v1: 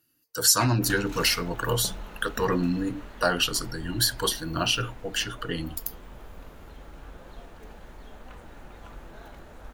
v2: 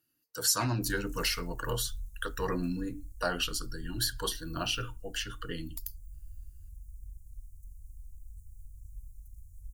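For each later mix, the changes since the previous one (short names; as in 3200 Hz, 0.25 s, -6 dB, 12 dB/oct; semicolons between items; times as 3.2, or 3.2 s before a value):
speech -7.5 dB; background: add inverse Chebyshev band-stop 240–3500 Hz, stop band 50 dB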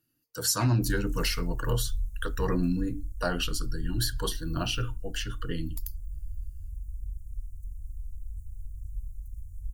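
master: add low shelf 290 Hz +9.5 dB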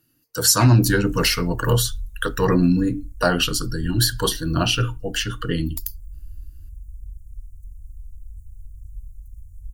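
speech +10.5 dB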